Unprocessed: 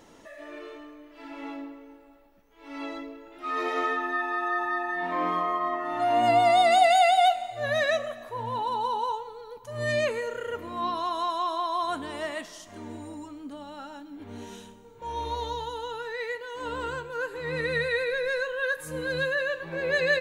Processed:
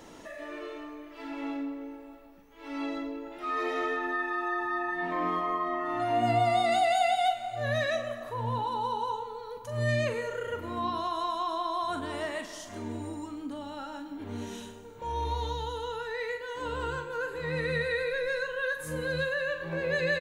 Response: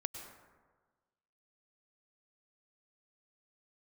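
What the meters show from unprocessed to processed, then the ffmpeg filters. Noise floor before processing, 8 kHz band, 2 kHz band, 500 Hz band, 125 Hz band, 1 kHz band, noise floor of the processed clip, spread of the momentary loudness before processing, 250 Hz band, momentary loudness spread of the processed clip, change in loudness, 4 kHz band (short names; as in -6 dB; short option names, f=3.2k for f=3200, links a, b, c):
-52 dBFS, -3.5 dB, -3.5 dB, -3.5 dB, +5.5 dB, -4.5 dB, -48 dBFS, 21 LU, +1.5 dB, 14 LU, -4.5 dB, -4.5 dB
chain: -filter_complex "[0:a]asplit=2[a][b];[b]adelay=43,volume=-8.5dB[c];[a][c]amix=inputs=2:normalize=0,asplit=2[d][e];[1:a]atrim=start_sample=2205[f];[e][f]afir=irnorm=-1:irlink=0,volume=-4dB[g];[d][g]amix=inputs=2:normalize=0,acrossover=split=230[h][i];[i]acompressor=threshold=-42dB:ratio=1.5[j];[h][j]amix=inputs=2:normalize=0"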